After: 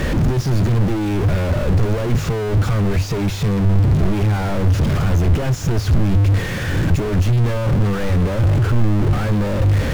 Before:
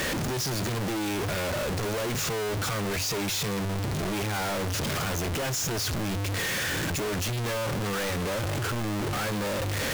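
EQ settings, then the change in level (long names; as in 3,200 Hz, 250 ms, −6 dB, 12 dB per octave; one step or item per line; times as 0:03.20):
RIAA equalisation playback
high-shelf EQ 10,000 Hz +7.5 dB
+4.0 dB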